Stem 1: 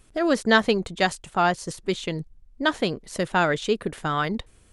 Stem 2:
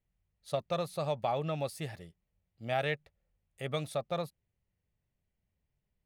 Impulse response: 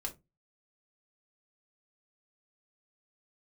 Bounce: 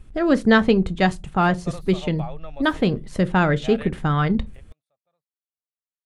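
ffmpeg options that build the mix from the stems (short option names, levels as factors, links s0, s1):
-filter_complex "[0:a]bass=f=250:g=12,treble=f=4000:g=-9,volume=0.841,asplit=3[s0][s1][s2];[s1]volume=0.447[s3];[1:a]equalizer=f=1100:w=0.43:g=7.5,adelay=950,volume=0.316[s4];[s2]apad=whole_len=308956[s5];[s4][s5]sidechaingate=range=0.0158:threshold=0.01:ratio=16:detection=peak[s6];[2:a]atrim=start_sample=2205[s7];[s3][s7]afir=irnorm=-1:irlink=0[s8];[s0][s6][s8]amix=inputs=3:normalize=0"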